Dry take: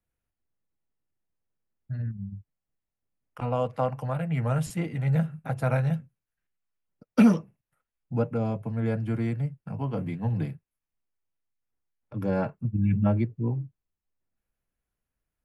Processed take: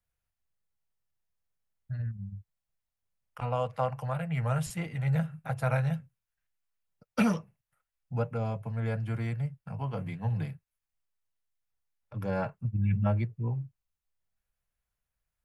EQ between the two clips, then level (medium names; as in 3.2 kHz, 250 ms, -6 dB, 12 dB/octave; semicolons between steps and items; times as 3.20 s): peaking EQ 290 Hz -12.5 dB 1.2 oct; 0.0 dB